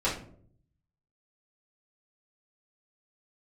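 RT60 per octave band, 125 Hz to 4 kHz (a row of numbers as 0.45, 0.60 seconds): 1.1, 0.80, 0.70, 0.45, 0.35, 0.30 seconds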